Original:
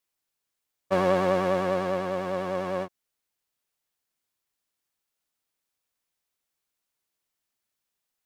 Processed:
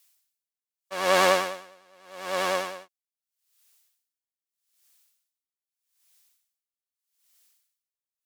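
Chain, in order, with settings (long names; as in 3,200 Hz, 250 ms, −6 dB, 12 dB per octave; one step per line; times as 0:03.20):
high-pass filter 1,000 Hz 6 dB per octave
high-shelf EQ 2,600 Hz +12 dB
tremolo with a sine in dB 0.81 Hz, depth 35 dB
level +9 dB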